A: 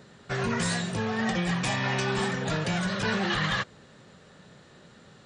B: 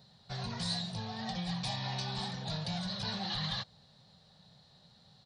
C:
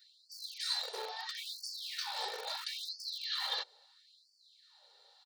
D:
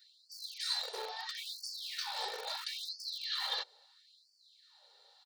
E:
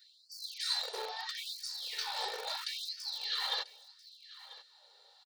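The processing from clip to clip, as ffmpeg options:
ffmpeg -i in.wav -af "firequalizer=gain_entry='entry(160,0);entry(320,-16);entry(760,1);entry(1300,-11);entry(2700,-7);entry(4100,10);entry(7200,-10);entry(11000,3)':delay=0.05:min_phase=1,volume=-7dB" out.wav
ffmpeg -i in.wav -filter_complex "[0:a]acrossover=split=220|670|1900[link_01][link_02][link_03][link_04];[link_01]aeval=exprs='(mod(94.4*val(0)+1,2)-1)/94.4':channel_layout=same[link_05];[link_05][link_02][link_03][link_04]amix=inputs=4:normalize=0,aecho=1:1:2.2:0.46,afftfilt=real='re*gte(b*sr/1024,360*pow(4400/360,0.5+0.5*sin(2*PI*0.75*pts/sr)))':imag='im*gte(b*sr/1024,360*pow(4400/360,0.5+0.5*sin(2*PI*0.75*pts/sr)))':win_size=1024:overlap=0.75" out.wav
ffmpeg -i in.wav -af "aeval=exprs='0.0708*(cos(1*acos(clip(val(0)/0.0708,-1,1)))-cos(1*PI/2))+0.000398*(cos(6*acos(clip(val(0)/0.0708,-1,1)))-cos(6*PI/2))+0.000631*(cos(8*acos(clip(val(0)/0.0708,-1,1)))-cos(8*PI/2))':channel_layout=same" out.wav
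ffmpeg -i in.wav -af "aecho=1:1:991:0.133,volume=1.5dB" out.wav

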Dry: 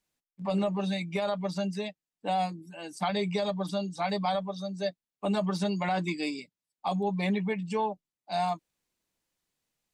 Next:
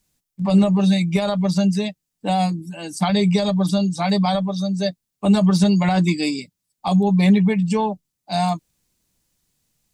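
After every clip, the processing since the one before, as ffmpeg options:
ffmpeg -i in.wav -af "bass=frequency=250:gain=12,treble=frequency=4000:gain=8,volume=6.5dB" out.wav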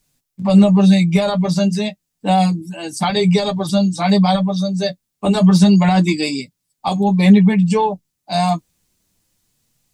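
ffmpeg -i in.wav -af "flanger=delay=6.9:depth=6.5:regen=-25:speed=0.3:shape=triangular,volume=7.5dB" out.wav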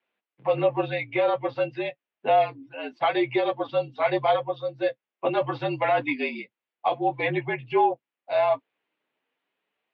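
ffmpeg -i in.wav -af "highpass=frequency=390:width_type=q:width=0.5412,highpass=frequency=390:width_type=q:width=1.307,lowpass=frequency=3000:width_type=q:width=0.5176,lowpass=frequency=3000:width_type=q:width=0.7071,lowpass=frequency=3000:width_type=q:width=1.932,afreqshift=-51,volume=-3dB" out.wav

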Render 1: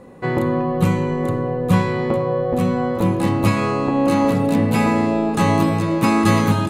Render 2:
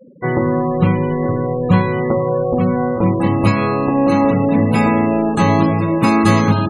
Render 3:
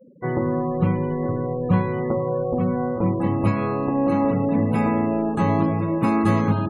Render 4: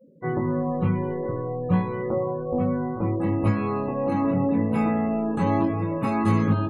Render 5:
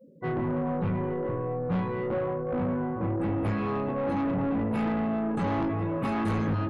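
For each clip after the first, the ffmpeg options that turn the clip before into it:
ffmpeg -i in.wav -af "afftfilt=real='re*gte(hypot(re,im),0.0398)':imag='im*gte(hypot(re,im),0.0398)':win_size=1024:overlap=0.75,volume=3dB" out.wav
ffmpeg -i in.wav -af "equalizer=frequency=5400:width_type=o:width=2.1:gain=-12.5,volume=-6dB" out.wav
ffmpeg -i in.wav -af "flanger=delay=18.5:depth=4.2:speed=0.3" out.wav
ffmpeg -i in.wav -af "asoftclip=type=tanh:threshold=-24dB" out.wav

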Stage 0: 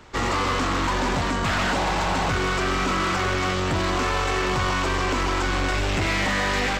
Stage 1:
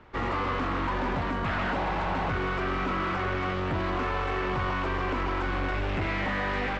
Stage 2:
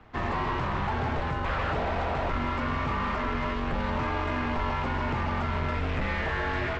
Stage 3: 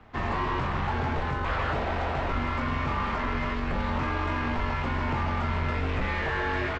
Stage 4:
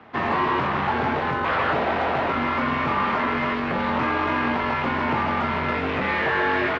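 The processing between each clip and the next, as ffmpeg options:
ffmpeg -i in.wav -af "lowpass=2400,volume=-5dB" out.wav
ffmpeg -i in.wav -af "afreqshift=-130" out.wav
ffmpeg -i in.wav -filter_complex "[0:a]asplit=2[link_01][link_02];[link_02]adelay=22,volume=-8dB[link_03];[link_01][link_03]amix=inputs=2:normalize=0" out.wav
ffmpeg -i in.wav -af "highpass=180,lowpass=4000,volume=7.5dB" out.wav

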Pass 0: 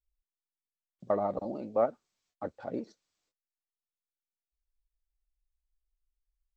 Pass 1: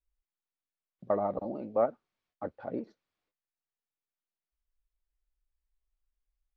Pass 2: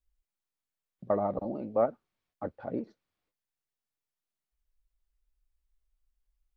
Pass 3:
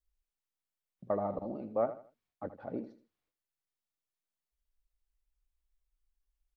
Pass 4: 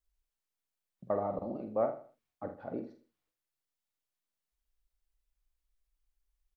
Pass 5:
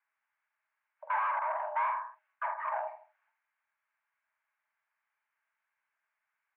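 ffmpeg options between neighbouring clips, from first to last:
ffmpeg -i in.wav -af "lowpass=2700" out.wav
ffmpeg -i in.wav -af "lowshelf=frequency=200:gain=6" out.wav
ffmpeg -i in.wav -af "aecho=1:1:80|160|240:0.224|0.0694|0.0215,volume=-4.5dB" out.wav
ffmpeg -i in.wav -filter_complex "[0:a]asplit=2[link_01][link_02];[link_02]adelay=47,volume=-8dB[link_03];[link_01][link_03]amix=inputs=2:normalize=0" out.wav
ffmpeg -i in.wav -filter_complex "[0:a]asplit=2[link_01][link_02];[link_02]highpass=frequency=720:poles=1,volume=29dB,asoftclip=type=tanh:threshold=-19dB[link_03];[link_01][link_03]amix=inputs=2:normalize=0,lowpass=frequency=1200:poles=1,volume=-6dB,highpass=240,equalizer=frequency=240:width_type=q:width=4:gain=7,equalizer=frequency=340:width_type=q:width=4:gain=-6,equalizer=frequency=480:width_type=q:width=4:gain=6,equalizer=frequency=750:width_type=q:width=4:gain=3,equalizer=frequency=1200:width_type=q:width=4:gain=8,equalizer=frequency=1800:width_type=q:width=4:gain=6,lowpass=frequency=2100:width=0.5412,lowpass=frequency=2100:width=1.3066,afreqshift=390,volume=-7dB" out.wav

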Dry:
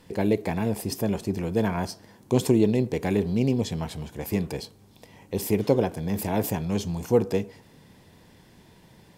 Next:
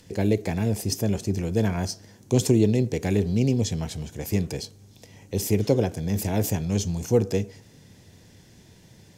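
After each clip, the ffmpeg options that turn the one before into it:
ffmpeg -i in.wav -filter_complex "[0:a]equalizer=frequency=100:width_type=o:width=0.67:gain=7,equalizer=frequency=1000:width_type=o:width=0.67:gain=-7,equalizer=frequency=6300:width_type=o:width=0.67:gain=9,acrossover=split=410|1300[link_01][link_02][link_03];[link_03]acompressor=mode=upward:threshold=-59dB:ratio=2.5[link_04];[link_01][link_02][link_04]amix=inputs=3:normalize=0" out.wav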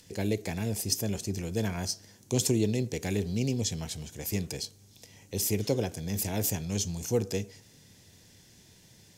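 ffmpeg -i in.wav -af "highshelf=frequency=2300:gain=9.5,volume=-7.5dB" out.wav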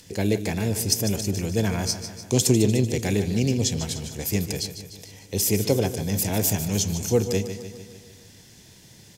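ffmpeg -i in.wav -af "aecho=1:1:149|298|447|596|745|894|1043:0.282|0.163|0.0948|0.055|0.0319|0.0185|0.0107,volume=6.5dB" out.wav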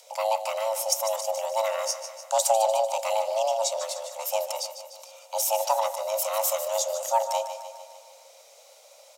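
ffmpeg -i in.wav -af "afreqshift=440,volume=-3dB" out.wav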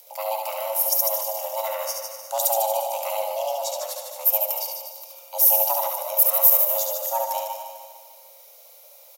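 ffmpeg -i in.wav -af "aecho=1:1:70|150.5|243.1|349.5|472:0.631|0.398|0.251|0.158|0.1,aexciter=amount=11.6:drive=2.1:freq=11000,volume=-3.5dB" out.wav

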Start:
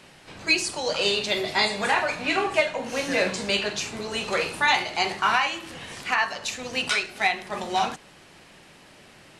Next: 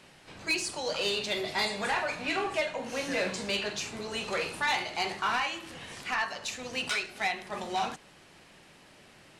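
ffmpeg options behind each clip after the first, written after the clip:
ffmpeg -i in.wav -af "asoftclip=type=tanh:threshold=-16.5dB,volume=-5dB" out.wav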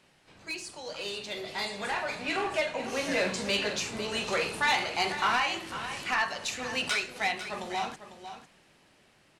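ffmpeg -i in.wav -af "dynaudnorm=framelen=330:gausssize=13:maxgain=10.5dB,aecho=1:1:499:0.266,volume=-8dB" out.wav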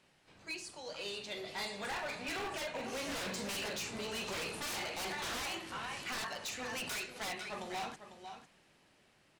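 ffmpeg -i in.wav -af "aeval=exprs='0.0376*(abs(mod(val(0)/0.0376+3,4)-2)-1)':channel_layout=same,volume=-5.5dB" out.wav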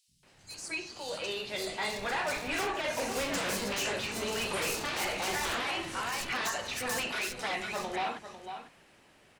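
ffmpeg -i in.wav -filter_complex "[0:a]acrossover=split=180|4300[link_01][link_02][link_03];[link_01]adelay=80[link_04];[link_02]adelay=230[link_05];[link_04][link_05][link_03]amix=inputs=3:normalize=0,volume=7.5dB" out.wav

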